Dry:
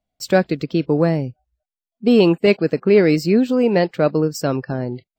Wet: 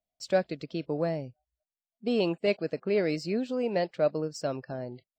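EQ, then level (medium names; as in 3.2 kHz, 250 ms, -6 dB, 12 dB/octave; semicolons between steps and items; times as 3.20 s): distance through air 110 m; pre-emphasis filter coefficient 0.8; peaking EQ 620 Hz +9 dB 0.53 oct; -1.5 dB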